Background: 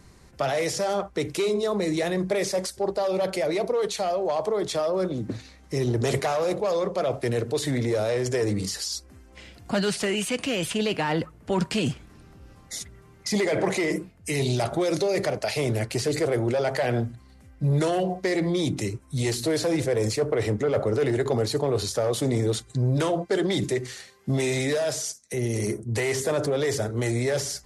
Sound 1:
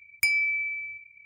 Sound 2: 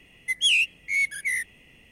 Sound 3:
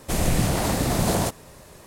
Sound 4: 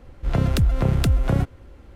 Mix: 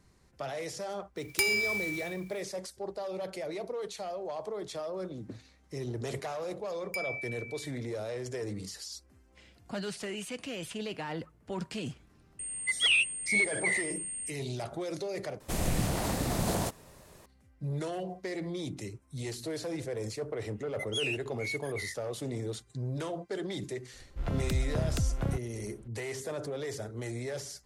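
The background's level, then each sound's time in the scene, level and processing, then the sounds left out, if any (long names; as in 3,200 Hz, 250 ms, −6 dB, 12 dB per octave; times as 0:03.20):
background −12 dB
0:01.16: mix in 1 −4 dB + spectral envelope flattened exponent 0.3
0:06.71: mix in 1 −13 dB
0:12.39: mix in 2 −3 dB + switching amplifier with a slow clock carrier 8,600 Hz
0:15.40: overwrite with 3 −8 dB
0:20.51: mix in 2 −13.5 dB, fades 0.10 s
0:23.93: mix in 4 −11 dB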